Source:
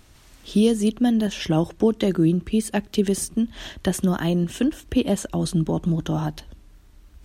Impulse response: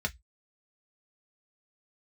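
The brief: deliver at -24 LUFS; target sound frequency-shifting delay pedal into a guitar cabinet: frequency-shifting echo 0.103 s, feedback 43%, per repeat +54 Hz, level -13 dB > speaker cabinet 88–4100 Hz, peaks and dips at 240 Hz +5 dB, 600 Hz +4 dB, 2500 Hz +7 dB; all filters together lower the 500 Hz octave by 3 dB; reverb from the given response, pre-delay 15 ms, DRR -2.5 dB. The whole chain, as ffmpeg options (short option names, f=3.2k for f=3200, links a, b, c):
-filter_complex "[0:a]equalizer=f=500:t=o:g=-5.5,asplit=2[a][b];[1:a]atrim=start_sample=2205,adelay=15[c];[b][c]afir=irnorm=-1:irlink=0,volume=-3dB[d];[a][d]amix=inputs=2:normalize=0,asplit=5[e][f][g][h][i];[f]adelay=103,afreqshift=54,volume=-13dB[j];[g]adelay=206,afreqshift=108,volume=-20.3dB[k];[h]adelay=309,afreqshift=162,volume=-27.7dB[l];[i]adelay=412,afreqshift=216,volume=-35dB[m];[e][j][k][l][m]amix=inputs=5:normalize=0,highpass=88,equalizer=f=240:t=q:w=4:g=5,equalizer=f=600:t=q:w=4:g=4,equalizer=f=2.5k:t=q:w=4:g=7,lowpass=f=4.1k:w=0.5412,lowpass=f=4.1k:w=1.3066,volume=-8dB"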